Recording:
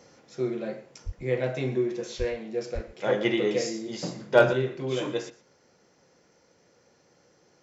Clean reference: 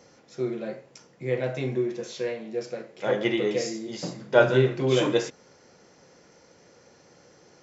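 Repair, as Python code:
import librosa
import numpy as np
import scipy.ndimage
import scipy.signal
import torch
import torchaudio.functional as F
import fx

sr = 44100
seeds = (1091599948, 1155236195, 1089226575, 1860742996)

y = fx.fix_declip(x, sr, threshold_db=-7.5)
y = fx.highpass(y, sr, hz=140.0, slope=24, at=(1.05, 1.17), fade=0.02)
y = fx.highpass(y, sr, hz=140.0, slope=24, at=(2.18, 2.3), fade=0.02)
y = fx.highpass(y, sr, hz=140.0, slope=24, at=(2.74, 2.86), fade=0.02)
y = fx.fix_echo_inverse(y, sr, delay_ms=119, level_db=-18.0)
y = fx.gain(y, sr, db=fx.steps((0.0, 0.0), (4.53, 7.0)))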